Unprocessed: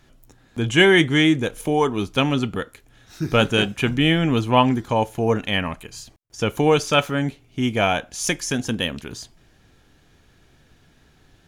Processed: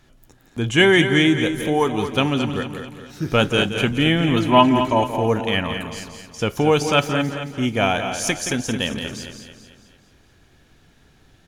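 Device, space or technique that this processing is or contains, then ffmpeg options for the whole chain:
ducked delay: -filter_complex "[0:a]asplit=3[link_01][link_02][link_03];[link_02]adelay=172,volume=-8.5dB[link_04];[link_03]apad=whole_len=513816[link_05];[link_04][link_05]sidechaincompress=threshold=-24dB:ratio=8:attack=16:release=155[link_06];[link_01][link_06]amix=inputs=2:normalize=0,asettb=1/sr,asplit=3[link_07][link_08][link_09];[link_07]atrim=end=4.364[link_10];[link_08]atrim=start=4.36:end=5.04,asetpts=PTS-STARTPTS,afade=type=in:duration=0.004:curve=qsin,afade=type=out:start_time=0.676:duration=0.004:curve=qsin,aecho=1:1:3.1:0.79,atrim=end_sample=29988[link_11];[link_09]atrim=start=5.036[link_12];[link_10][link_11]acrossfade=duration=0.004:curve1=hsin:curve2=qsin[link_13];[link_13][link_12]acrossfade=duration=0.004:curve1=qsin:curve2=hsin,aecho=1:1:220|440|660|880|1100:0.335|0.157|0.074|0.0348|0.0163"

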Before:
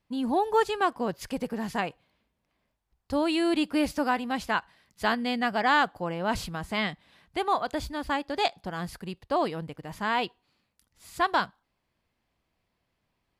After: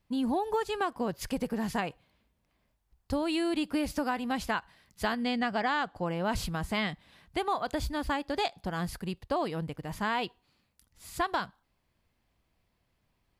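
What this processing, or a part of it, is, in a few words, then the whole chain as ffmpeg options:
ASMR close-microphone chain: -filter_complex "[0:a]lowshelf=frequency=120:gain=7.5,acompressor=threshold=-26dB:ratio=6,highshelf=frequency=7900:gain=4,asettb=1/sr,asplit=3[link_01][link_02][link_03];[link_01]atrim=end=5.244[link_04];[link_02]atrim=start=5.24:end=6.03,asetpts=PTS-STARTPTS,afade=type=in:duration=0.004:curve=qsin,afade=type=out:start_time=0.786:duration=0.004:curve=qsin,lowpass=7900[link_05];[link_03]atrim=start=6.026[link_06];[link_04][link_05]acrossfade=duration=0.004:curve1=hsin:curve2=qsin[link_07];[link_07][link_06]acrossfade=duration=0.004:curve1=qsin:curve2=hsin"

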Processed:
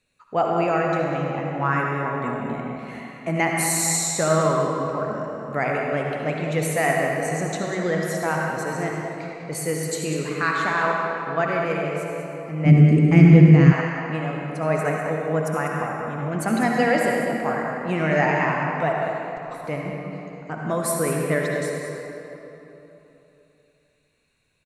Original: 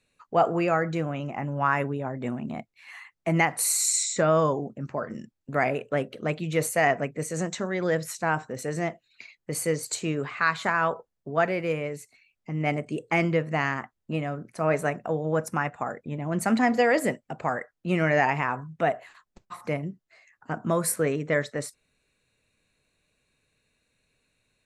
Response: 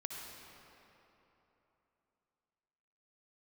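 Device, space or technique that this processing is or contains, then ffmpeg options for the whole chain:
cave: -filter_complex "[0:a]aecho=1:1:197:0.282[link_01];[1:a]atrim=start_sample=2205[link_02];[link_01][link_02]afir=irnorm=-1:irlink=0,asplit=3[link_03][link_04][link_05];[link_03]afade=type=out:start_time=12.65:duration=0.02[link_06];[link_04]asubboost=boost=10.5:cutoff=230,afade=type=in:start_time=12.65:duration=0.02,afade=type=out:start_time=13.71:duration=0.02[link_07];[link_05]afade=type=in:start_time=13.71:duration=0.02[link_08];[link_06][link_07][link_08]amix=inputs=3:normalize=0,volume=3.5dB"

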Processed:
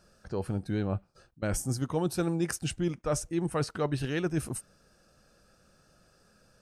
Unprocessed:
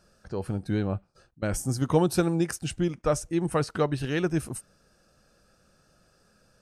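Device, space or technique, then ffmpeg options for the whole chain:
compression on the reversed sound: -af "areverse,acompressor=threshold=-25dB:ratio=6,areverse"

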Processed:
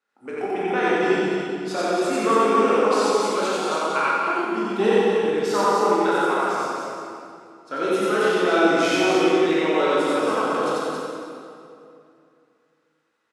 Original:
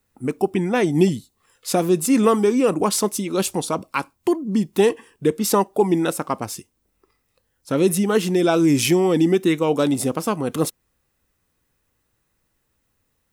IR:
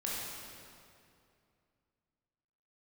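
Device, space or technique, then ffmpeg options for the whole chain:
station announcement: -filter_complex "[0:a]asettb=1/sr,asplit=3[link_01][link_02][link_03];[link_01]atrim=end=4.774[link_04];[link_02]atrim=start=4.77:end=5.25,asetpts=PTS-STARTPTS,afade=type=in:duration=0.004:curve=qsin,afade=type=out:start_time=0.476:duration=0.004:curve=qsin,equalizer=frequency=130:width_type=o:width=1.8:gain=12.5[link_05];[link_03]atrim=start=5.246[link_06];[link_04][link_05]acrossfade=duration=0.004:curve1=hsin:curve2=qsin[link_07];[link_07][link_06]acrossfade=duration=0.004:curve1=qsin:curve2=hsin,highpass=430,lowpass=4800,equalizer=frequency=1400:width_type=o:width=0.36:gain=9,aecho=1:1:90.38|274.1:1|0.631[link_08];[1:a]atrim=start_sample=2205[link_09];[link_08][link_09]afir=irnorm=-1:irlink=0,volume=-5dB"

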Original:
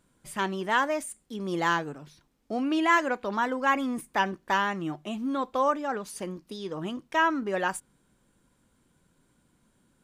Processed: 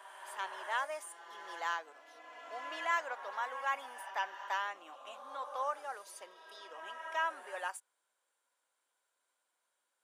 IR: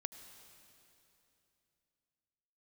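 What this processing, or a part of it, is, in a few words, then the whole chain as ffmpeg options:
ghost voice: -filter_complex "[0:a]areverse[link_01];[1:a]atrim=start_sample=2205[link_02];[link_01][link_02]afir=irnorm=-1:irlink=0,areverse,highpass=frequency=590:width=0.5412,highpass=frequency=590:width=1.3066,volume=-7dB"

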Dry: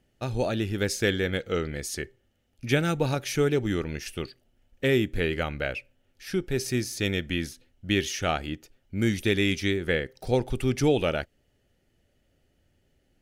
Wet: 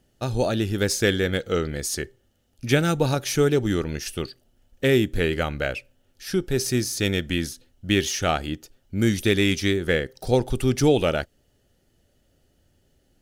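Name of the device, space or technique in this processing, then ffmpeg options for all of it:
exciter from parts: -filter_complex "[0:a]asplit=2[link_01][link_02];[link_02]highpass=frequency=2100:width=0.5412,highpass=frequency=2100:width=1.3066,asoftclip=type=tanh:threshold=-32.5dB,volume=-4dB[link_03];[link_01][link_03]amix=inputs=2:normalize=0,volume=4dB"

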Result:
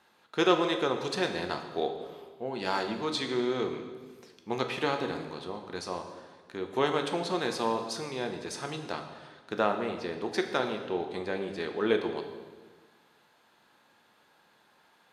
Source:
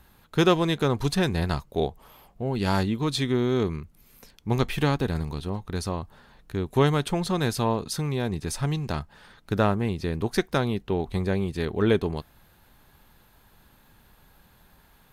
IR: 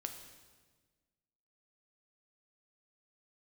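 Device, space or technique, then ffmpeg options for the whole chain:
supermarket ceiling speaker: -filter_complex "[0:a]highpass=350,lowpass=6600[link_01];[1:a]atrim=start_sample=2205[link_02];[link_01][link_02]afir=irnorm=-1:irlink=0"

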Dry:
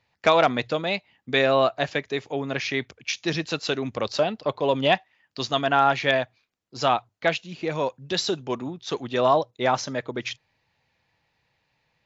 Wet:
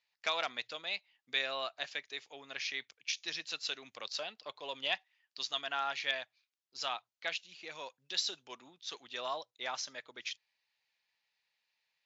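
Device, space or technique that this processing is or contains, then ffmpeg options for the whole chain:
piezo pickup straight into a mixer: -af "lowpass=5100,aderivative"

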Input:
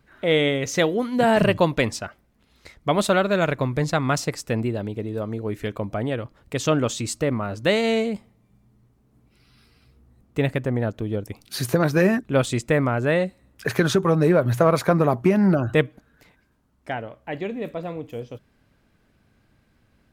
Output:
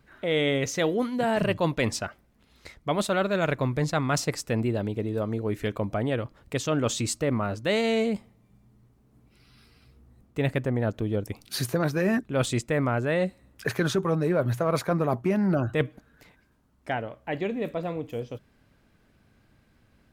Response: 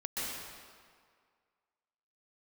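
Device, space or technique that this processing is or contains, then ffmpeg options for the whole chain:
compression on the reversed sound: -af "areverse,acompressor=threshold=-21dB:ratio=6,areverse"

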